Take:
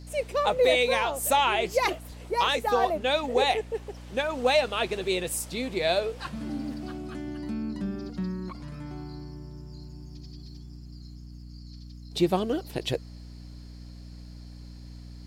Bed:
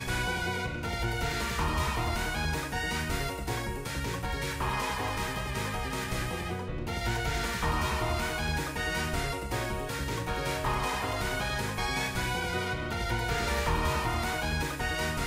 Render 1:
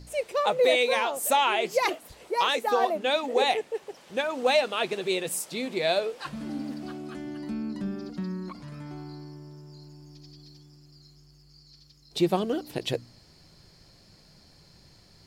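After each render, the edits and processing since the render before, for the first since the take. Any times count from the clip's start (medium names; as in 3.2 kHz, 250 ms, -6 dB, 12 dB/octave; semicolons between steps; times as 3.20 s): de-hum 60 Hz, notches 5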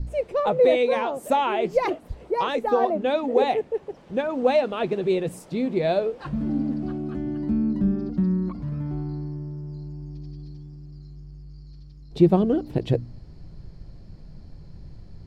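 tilt EQ -4.5 dB/octave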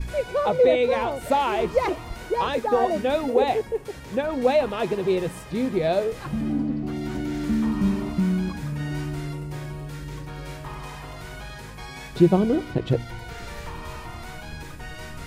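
add bed -8 dB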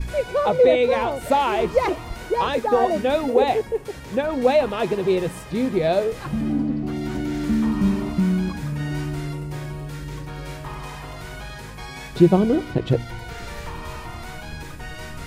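trim +2.5 dB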